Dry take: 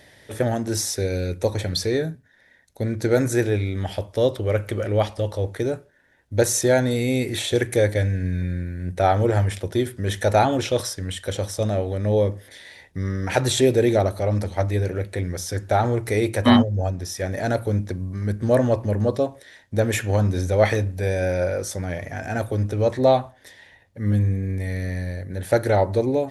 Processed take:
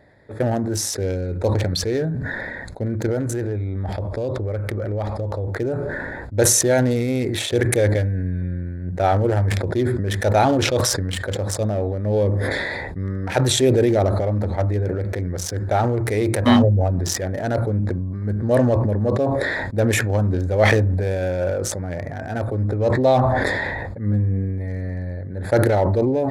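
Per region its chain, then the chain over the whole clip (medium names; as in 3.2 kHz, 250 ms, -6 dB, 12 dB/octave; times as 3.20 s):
3.06–5.48 s: bass shelf 62 Hz +10.5 dB + compression 5:1, threshold -21 dBFS
whole clip: local Wiener filter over 15 samples; decay stretcher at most 21 dB/s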